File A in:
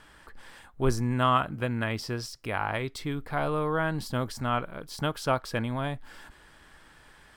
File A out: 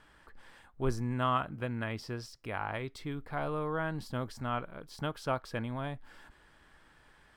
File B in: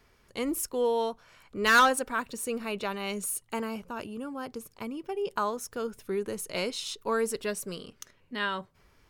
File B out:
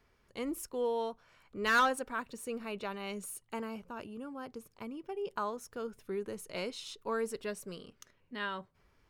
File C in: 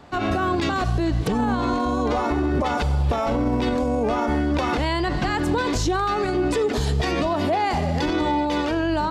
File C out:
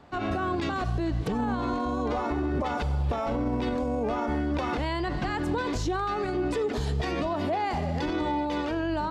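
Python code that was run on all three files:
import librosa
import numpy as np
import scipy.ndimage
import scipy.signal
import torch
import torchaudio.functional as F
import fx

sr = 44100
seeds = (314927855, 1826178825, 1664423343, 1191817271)

y = fx.high_shelf(x, sr, hz=4400.0, db=-6.0)
y = y * librosa.db_to_amplitude(-6.0)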